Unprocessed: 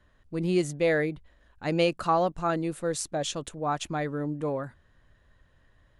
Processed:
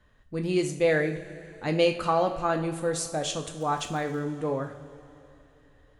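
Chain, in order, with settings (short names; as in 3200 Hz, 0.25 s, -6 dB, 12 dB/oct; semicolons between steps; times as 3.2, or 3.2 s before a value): 3.6–4.18 crackle 47/s -37 dBFS; two-slope reverb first 0.43 s, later 3.3 s, from -17 dB, DRR 4 dB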